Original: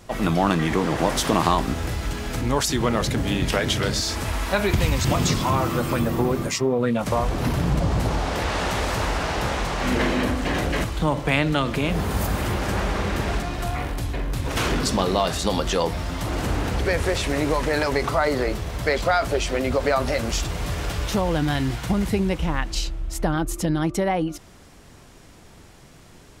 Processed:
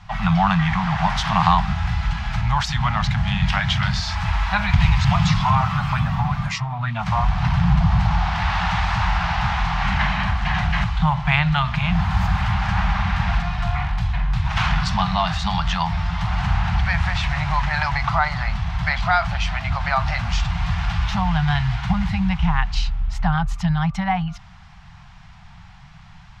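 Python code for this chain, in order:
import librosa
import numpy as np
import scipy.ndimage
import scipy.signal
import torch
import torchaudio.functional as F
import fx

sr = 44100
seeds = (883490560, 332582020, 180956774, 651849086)

y = scipy.signal.sosfilt(scipy.signal.ellip(3, 1.0, 40, [180.0, 780.0], 'bandstop', fs=sr, output='sos'), x)
y = fx.air_absorb(y, sr, metres=210.0)
y = F.gain(torch.from_numpy(y), 6.5).numpy()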